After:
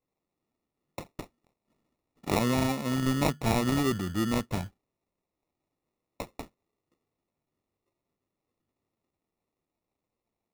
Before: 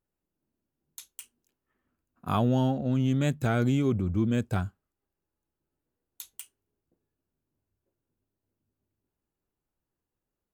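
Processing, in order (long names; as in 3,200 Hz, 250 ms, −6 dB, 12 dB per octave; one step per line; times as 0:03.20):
meter weighting curve D
decimation without filtering 28×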